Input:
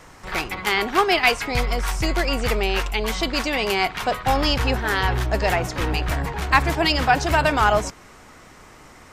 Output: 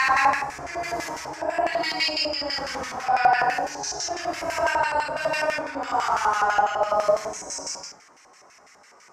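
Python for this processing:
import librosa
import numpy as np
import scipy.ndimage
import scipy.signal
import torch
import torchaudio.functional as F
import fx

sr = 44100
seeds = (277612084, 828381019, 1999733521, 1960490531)

y = fx.paulstretch(x, sr, seeds[0], factor=5.7, window_s=0.1, from_s=6.53)
y = fx.filter_lfo_bandpass(y, sr, shape='square', hz=6.0, low_hz=740.0, high_hz=2300.0, q=1.4)
y = fx.high_shelf_res(y, sr, hz=4500.0, db=8.5, q=3.0)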